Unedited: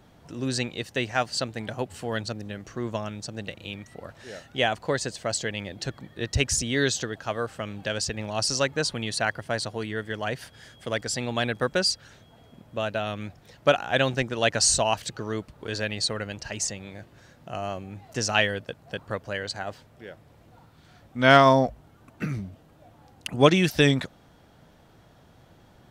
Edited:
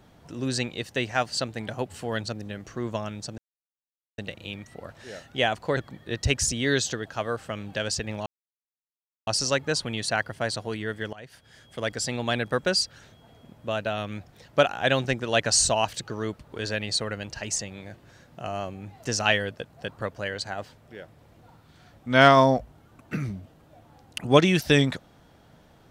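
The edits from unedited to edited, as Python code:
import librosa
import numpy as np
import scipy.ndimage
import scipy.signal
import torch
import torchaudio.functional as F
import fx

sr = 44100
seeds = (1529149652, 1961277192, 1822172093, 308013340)

y = fx.edit(x, sr, fx.insert_silence(at_s=3.38, length_s=0.8),
    fx.cut(start_s=4.97, length_s=0.9),
    fx.insert_silence(at_s=8.36, length_s=1.01),
    fx.fade_in_from(start_s=10.22, length_s=0.8, floor_db=-19.5), tone=tone)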